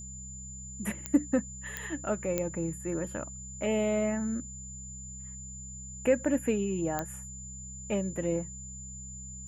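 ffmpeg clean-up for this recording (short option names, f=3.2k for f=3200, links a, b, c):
-af "adeclick=t=4,bandreject=f=64.7:t=h:w=4,bandreject=f=129.4:t=h:w=4,bandreject=f=194.1:t=h:w=4,bandreject=f=7.1k:w=30"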